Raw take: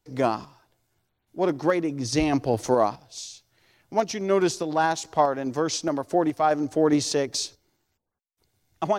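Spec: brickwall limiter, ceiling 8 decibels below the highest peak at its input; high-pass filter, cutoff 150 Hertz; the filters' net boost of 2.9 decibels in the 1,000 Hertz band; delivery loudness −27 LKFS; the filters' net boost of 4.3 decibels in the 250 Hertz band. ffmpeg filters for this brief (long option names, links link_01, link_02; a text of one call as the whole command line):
ffmpeg -i in.wav -af "highpass=150,equalizer=frequency=250:width_type=o:gain=6,equalizer=frequency=1000:width_type=o:gain=3.5,volume=-2.5dB,alimiter=limit=-15dB:level=0:latency=1" out.wav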